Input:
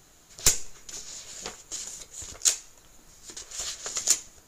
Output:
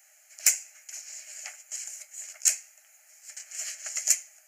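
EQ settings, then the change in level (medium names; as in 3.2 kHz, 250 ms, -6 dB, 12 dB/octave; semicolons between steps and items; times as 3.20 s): rippled Chebyshev high-pass 590 Hz, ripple 9 dB; treble shelf 2.3 kHz +12 dB; static phaser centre 990 Hz, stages 6; 0.0 dB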